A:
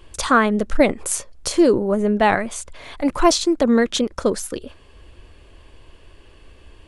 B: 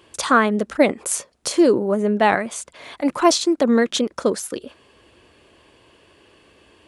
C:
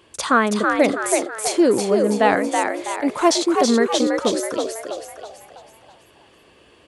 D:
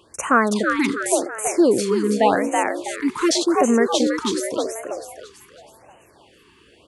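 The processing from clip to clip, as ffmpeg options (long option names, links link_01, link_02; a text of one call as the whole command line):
ffmpeg -i in.wav -af "highpass=160" out.wav
ffmpeg -i in.wav -filter_complex "[0:a]asplit=7[link_01][link_02][link_03][link_04][link_05][link_06][link_07];[link_02]adelay=326,afreqshift=71,volume=-4dB[link_08];[link_03]adelay=652,afreqshift=142,volume=-10.7dB[link_09];[link_04]adelay=978,afreqshift=213,volume=-17.5dB[link_10];[link_05]adelay=1304,afreqshift=284,volume=-24.2dB[link_11];[link_06]adelay=1630,afreqshift=355,volume=-31dB[link_12];[link_07]adelay=1956,afreqshift=426,volume=-37.7dB[link_13];[link_01][link_08][link_09][link_10][link_11][link_12][link_13]amix=inputs=7:normalize=0,volume=-1dB" out.wav
ffmpeg -i in.wav -af "afftfilt=real='re*(1-between(b*sr/1024,590*pow(4400/590,0.5+0.5*sin(2*PI*0.88*pts/sr))/1.41,590*pow(4400/590,0.5+0.5*sin(2*PI*0.88*pts/sr))*1.41))':imag='im*(1-between(b*sr/1024,590*pow(4400/590,0.5+0.5*sin(2*PI*0.88*pts/sr))/1.41,590*pow(4400/590,0.5+0.5*sin(2*PI*0.88*pts/sr))*1.41))':win_size=1024:overlap=0.75" out.wav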